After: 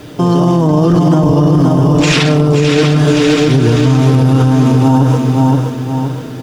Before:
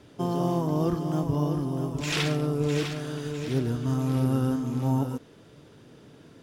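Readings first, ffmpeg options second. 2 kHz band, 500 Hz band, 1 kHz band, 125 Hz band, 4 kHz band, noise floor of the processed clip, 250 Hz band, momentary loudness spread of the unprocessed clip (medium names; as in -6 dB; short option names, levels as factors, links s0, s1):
+17.0 dB, +17.0 dB, +17.5 dB, +18.0 dB, +16.5 dB, -24 dBFS, +17.5 dB, 6 LU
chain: -filter_complex "[0:a]lowpass=7800,aecho=1:1:6.5:0.41,acrusher=bits=10:mix=0:aa=0.000001,asplit=2[s0][s1];[s1]aecho=0:1:522|1044|1566|2088|2610|3132:0.562|0.253|0.114|0.0512|0.0231|0.0104[s2];[s0][s2]amix=inputs=2:normalize=0,alimiter=level_in=11.2:limit=0.891:release=50:level=0:latency=1,volume=0.891"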